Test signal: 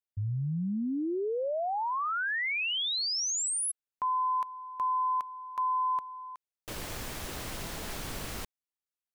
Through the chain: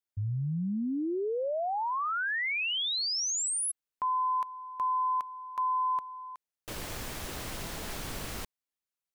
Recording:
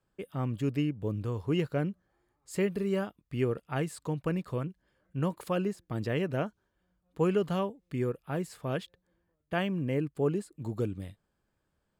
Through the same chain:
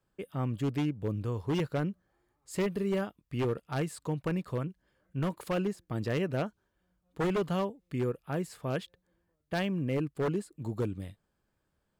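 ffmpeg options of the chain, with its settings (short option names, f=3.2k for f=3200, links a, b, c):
-af "aeval=exprs='0.0668*(abs(mod(val(0)/0.0668+3,4)-2)-1)':c=same"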